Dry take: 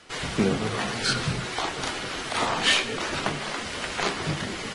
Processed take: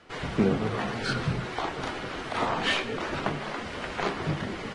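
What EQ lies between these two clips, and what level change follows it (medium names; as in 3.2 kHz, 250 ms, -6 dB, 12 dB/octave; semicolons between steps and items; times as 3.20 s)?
low-pass 1.5 kHz 6 dB/octave; 0.0 dB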